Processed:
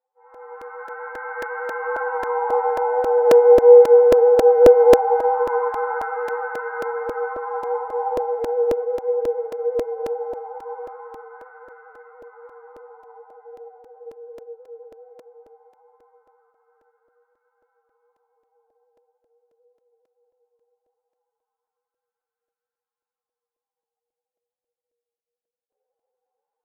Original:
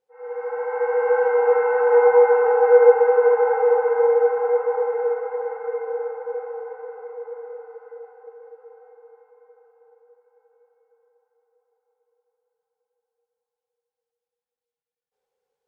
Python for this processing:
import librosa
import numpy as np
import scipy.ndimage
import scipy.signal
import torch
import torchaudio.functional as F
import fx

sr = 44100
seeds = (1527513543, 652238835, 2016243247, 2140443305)

y = fx.wah_lfo(x, sr, hz=0.32, low_hz=520.0, high_hz=1400.0, q=2.7)
y = fx.stretch_vocoder(y, sr, factor=1.7)
y = fx.buffer_crackle(y, sr, first_s=0.34, period_s=0.27, block=128, kind='repeat')
y = y * 10.0 ** (6.0 / 20.0)